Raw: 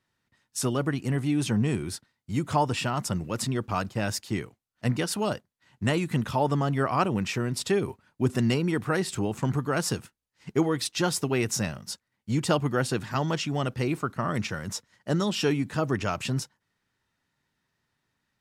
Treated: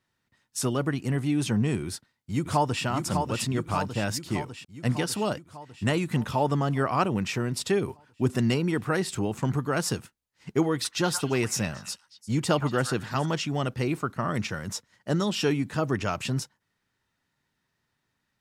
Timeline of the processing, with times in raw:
1.85–2.84 echo throw 0.6 s, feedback 65%, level -5 dB
10.73–13.26 delay with a stepping band-pass 0.115 s, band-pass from 1200 Hz, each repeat 1.4 oct, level -6.5 dB

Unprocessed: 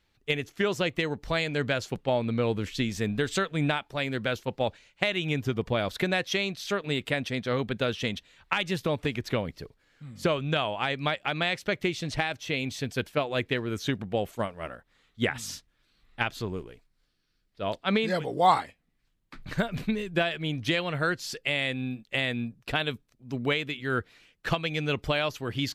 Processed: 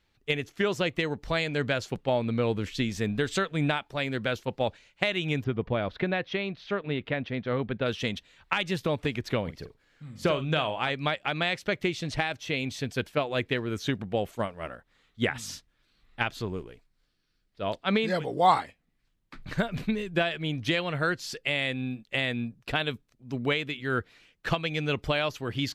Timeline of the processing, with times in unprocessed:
5.44–7.86 air absorption 300 m
9.41–10.9 doubler 46 ms -11.5 dB
whole clip: high shelf 8800 Hz -4.5 dB

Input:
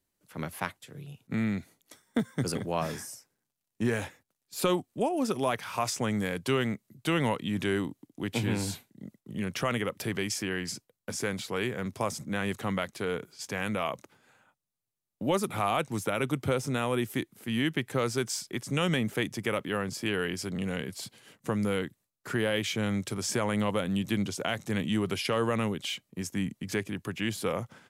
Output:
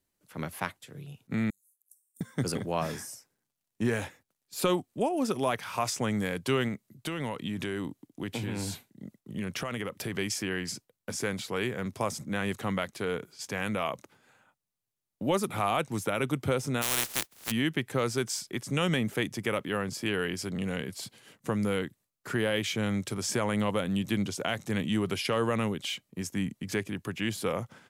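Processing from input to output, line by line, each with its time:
1.5–2.21 inverse Chebyshev high-pass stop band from 2900 Hz, stop band 60 dB
6.68–10.15 compressor, threshold -29 dBFS
16.81–17.5 spectral contrast lowered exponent 0.15

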